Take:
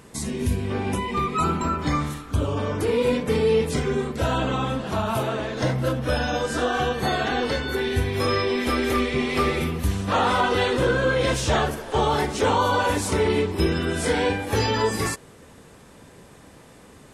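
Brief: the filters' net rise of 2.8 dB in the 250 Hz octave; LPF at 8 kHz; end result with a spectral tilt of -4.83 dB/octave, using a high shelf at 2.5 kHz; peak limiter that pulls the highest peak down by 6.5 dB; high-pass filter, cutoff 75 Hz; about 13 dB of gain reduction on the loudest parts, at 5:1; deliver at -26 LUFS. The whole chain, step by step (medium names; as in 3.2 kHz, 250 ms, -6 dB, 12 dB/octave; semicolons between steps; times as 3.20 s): high-pass 75 Hz; low-pass 8 kHz; peaking EQ 250 Hz +3.5 dB; treble shelf 2.5 kHz +4 dB; compression 5:1, threshold -31 dBFS; trim +9 dB; peak limiter -17 dBFS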